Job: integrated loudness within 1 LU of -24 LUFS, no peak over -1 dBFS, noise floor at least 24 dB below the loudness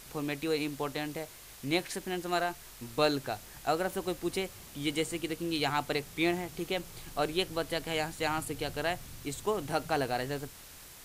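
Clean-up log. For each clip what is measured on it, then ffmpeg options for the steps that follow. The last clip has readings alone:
noise floor -51 dBFS; noise floor target -58 dBFS; loudness -33.5 LUFS; peak level -14.5 dBFS; loudness target -24.0 LUFS
-> -af "afftdn=nr=7:nf=-51"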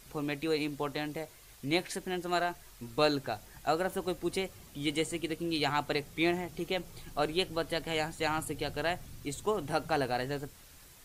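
noise floor -55 dBFS; noise floor target -58 dBFS
-> -af "afftdn=nr=6:nf=-55"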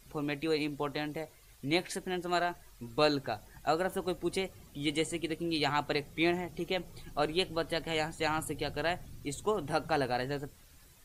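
noise floor -58 dBFS; loudness -33.5 LUFS; peak level -14.5 dBFS; loudness target -24.0 LUFS
-> -af "volume=2.99"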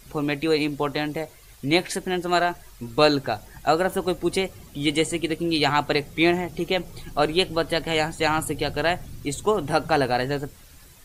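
loudness -24.0 LUFS; peak level -5.0 dBFS; noise floor -48 dBFS

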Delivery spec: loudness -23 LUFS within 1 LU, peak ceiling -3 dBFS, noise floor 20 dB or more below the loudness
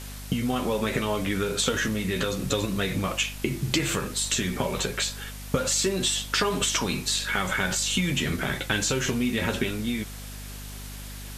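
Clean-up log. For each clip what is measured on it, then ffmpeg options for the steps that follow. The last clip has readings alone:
hum 50 Hz; highest harmonic 250 Hz; hum level -37 dBFS; noise floor -39 dBFS; noise floor target -46 dBFS; loudness -26.0 LUFS; peak level -5.5 dBFS; loudness target -23.0 LUFS
-> -af "bandreject=f=50:t=h:w=4,bandreject=f=100:t=h:w=4,bandreject=f=150:t=h:w=4,bandreject=f=200:t=h:w=4,bandreject=f=250:t=h:w=4"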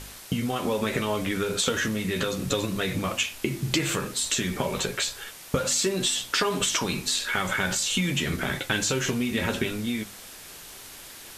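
hum not found; noise floor -44 dBFS; noise floor target -47 dBFS
-> -af "afftdn=nr=6:nf=-44"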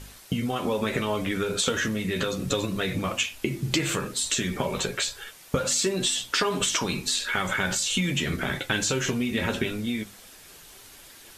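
noise floor -49 dBFS; loudness -26.5 LUFS; peak level -5.5 dBFS; loudness target -23.0 LUFS
-> -af "volume=1.5,alimiter=limit=0.708:level=0:latency=1"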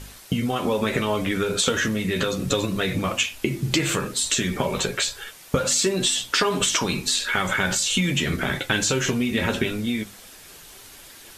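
loudness -23.0 LUFS; peak level -3.0 dBFS; noise floor -46 dBFS

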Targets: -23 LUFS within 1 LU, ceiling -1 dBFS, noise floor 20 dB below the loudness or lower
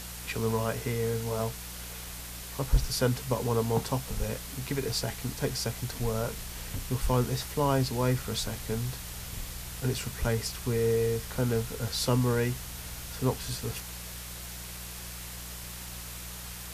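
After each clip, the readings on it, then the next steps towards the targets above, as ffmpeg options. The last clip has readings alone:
hum 60 Hz; highest harmonic 180 Hz; hum level -44 dBFS; noise floor -41 dBFS; noise floor target -52 dBFS; loudness -31.5 LUFS; peak level -13.5 dBFS; loudness target -23.0 LUFS
-> -af "bandreject=f=60:t=h:w=4,bandreject=f=120:t=h:w=4,bandreject=f=180:t=h:w=4"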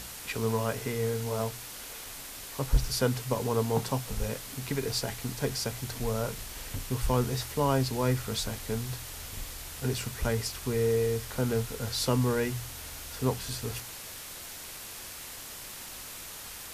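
hum not found; noise floor -43 dBFS; noise floor target -52 dBFS
-> -af "afftdn=nr=9:nf=-43"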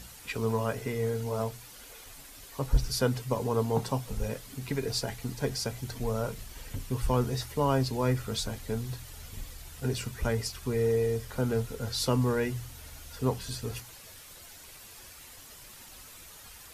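noise floor -50 dBFS; noise floor target -52 dBFS
-> -af "afftdn=nr=6:nf=-50"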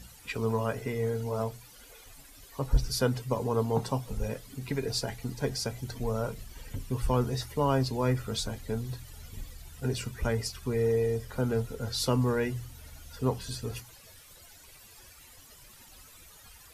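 noise floor -54 dBFS; loudness -31.5 LUFS; peak level -13.5 dBFS; loudness target -23.0 LUFS
-> -af "volume=2.66"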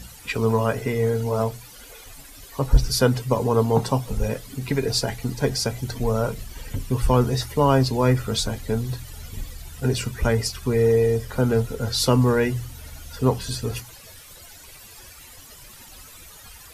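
loudness -23.0 LUFS; peak level -5.0 dBFS; noise floor -45 dBFS

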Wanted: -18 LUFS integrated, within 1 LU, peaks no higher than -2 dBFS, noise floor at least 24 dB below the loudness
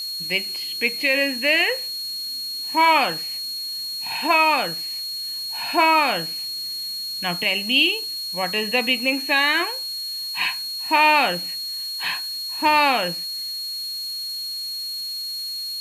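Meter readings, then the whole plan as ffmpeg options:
steady tone 4.3 kHz; tone level -27 dBFS; noise floor -30 dBFS; noise floor target -45 dBFS; loudness -21.0 LUFS; peak level -6.0 dBFS; loudness target -18.0 LUFS
-> -af "bandreject=f=4300:w=30"
-af "afftdn=nr=15:nf=-30"
-af "volume=1.41"

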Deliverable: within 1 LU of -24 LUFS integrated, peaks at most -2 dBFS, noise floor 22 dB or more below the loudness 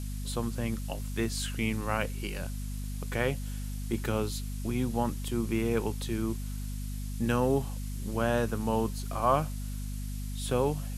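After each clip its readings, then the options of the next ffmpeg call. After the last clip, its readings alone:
hum 50 Hz; highest harmonic 250 Hz; hum level -33 dBFS; noise floor -36 dBFS; noise floor target -54 dBFS; loudness -32.0 LUFS; peak level -11.5 dBFS; loudness target -24.0 LUFS
-> -af "bandreject=f=50:t=h:w=6,bandreject=f=100:t=h:w=6,bandreject=f=150:t=h:w=6,bandreject=f=200:t=h:w=6,bandreject=f=250:t=h:w=6"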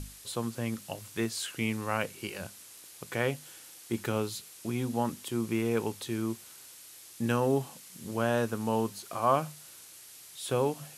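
hum not found; noise floor -51 dBFS; noise floor target -55 dBFS
-> -af "afftdn=nr=6:nf=-51"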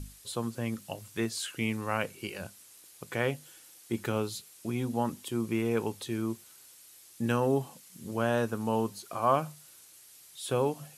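noise floor -55 dBFS; loudness -32.5 LUFS; peak level -11.0 dBFS; loudness target -24.0 LUFS
-> -af "volume=2.66"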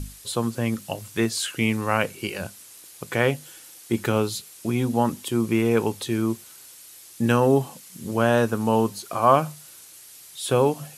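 loudness -24.0 LUFS; peak level -2.5 dBFS; noise floor -47 dBFS

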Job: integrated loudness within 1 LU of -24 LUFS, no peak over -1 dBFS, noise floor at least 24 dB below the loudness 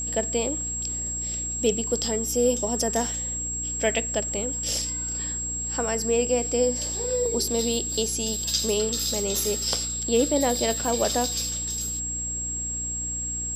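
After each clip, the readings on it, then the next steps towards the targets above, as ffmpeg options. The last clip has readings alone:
hum 60 Hz; highest harmonic 300 Hz; hum level -35 dBFS; steady tone 7.6 kHz; tone level -28 dBFS; loudness -25.0 LUFS; peak level -8.5 dBFS; loudness target -24.0 LUFS
-> -af "bandreject=f=60:t=h:w=4,bandreject=f=120:t=h:w=4,bandreject=f=180:t=h:w=4,bandreject=f=240:t=h:w=4,bandreject=f=300:t=h:w=4"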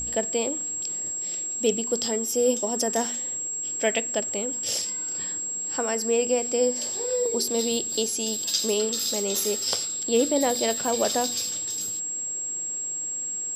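hum not found; steady tone 7.6 kHz; tone level -28 dBFS
-> -af "bandreject=f=7600:w=30"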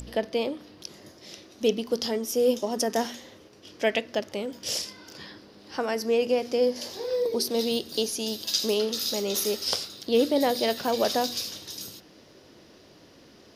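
steady tone not found; loudness -27.0 LUFS; peak level -8.5 dBFS; loudness target -24.0 LUFS
-> -af "volume=1.41"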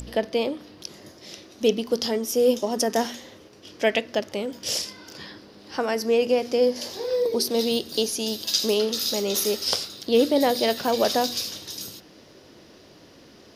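loudness -24.0 LUFS; peak level -5.5 dBFS; noise floor -51 dBFS

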